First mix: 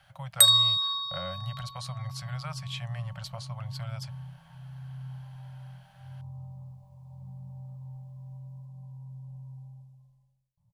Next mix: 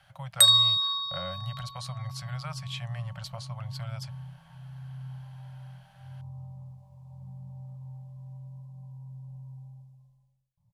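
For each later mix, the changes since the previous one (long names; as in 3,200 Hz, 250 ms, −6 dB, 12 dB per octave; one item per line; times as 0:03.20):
first sound: add meter weighting curve A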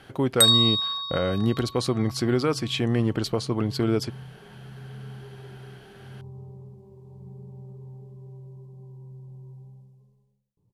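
speech +9.0 dB
master: remove Chebyshev band-stop filter 180–560 Hz, order 5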